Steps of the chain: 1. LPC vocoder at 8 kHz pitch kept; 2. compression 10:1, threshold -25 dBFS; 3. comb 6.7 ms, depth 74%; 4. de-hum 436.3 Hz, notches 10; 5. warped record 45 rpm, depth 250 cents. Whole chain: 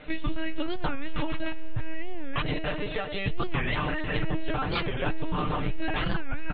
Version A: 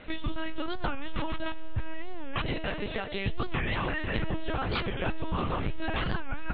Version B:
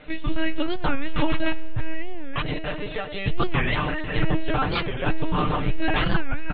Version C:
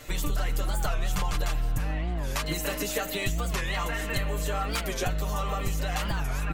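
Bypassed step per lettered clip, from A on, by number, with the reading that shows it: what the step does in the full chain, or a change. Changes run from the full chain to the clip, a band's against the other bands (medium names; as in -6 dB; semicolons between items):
3, crest factor change +5.0 dB; 2, mean gain reduction 4.0 dB; 1, 250 Hz band -4.0 dB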